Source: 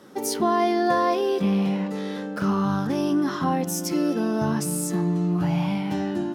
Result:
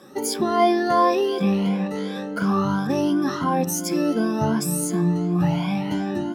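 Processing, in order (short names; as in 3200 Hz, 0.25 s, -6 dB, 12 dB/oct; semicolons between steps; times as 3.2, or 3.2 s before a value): moving spectral ripple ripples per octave 1.8, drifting +2.8 Hz, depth 14 dB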